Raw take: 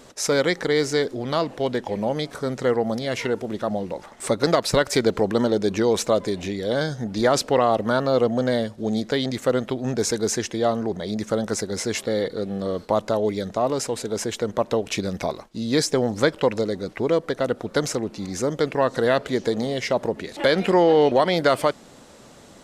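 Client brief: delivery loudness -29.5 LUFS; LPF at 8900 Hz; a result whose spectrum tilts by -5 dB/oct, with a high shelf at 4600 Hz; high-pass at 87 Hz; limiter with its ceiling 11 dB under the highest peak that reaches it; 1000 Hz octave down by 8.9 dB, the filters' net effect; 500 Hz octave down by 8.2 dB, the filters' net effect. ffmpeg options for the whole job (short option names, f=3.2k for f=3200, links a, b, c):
-af "highpass=87,lowpass=8.9k,equalizer=f=500:t=o:g=-7.5,equalizer=f=1k:t=o:g=-9,highshelf=f=4.6k:g=-8,volume=2.5dB,alimiter=limit=-18dB:level=0:latency=1"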